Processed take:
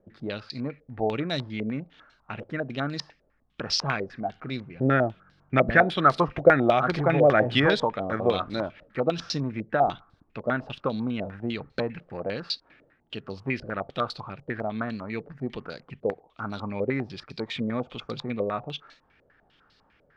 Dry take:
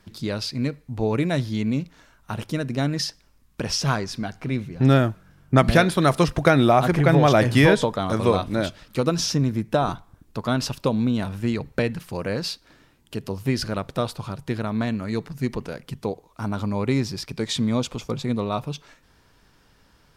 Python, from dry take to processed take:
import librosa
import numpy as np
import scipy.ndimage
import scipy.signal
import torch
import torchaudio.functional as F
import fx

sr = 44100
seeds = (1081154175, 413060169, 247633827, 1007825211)

y = fx.low_shelf(x, sr, hz=140.0, db=-7.5)
y = fx.notch(y, sr, hz=980.0, q=7.6)
y = fx.filter_held_lowpass(y, sr, hz=10.0, low_hz=550.0, high_hz=4300.0)
y = y * librosa.db_to_amplitude(-5.5)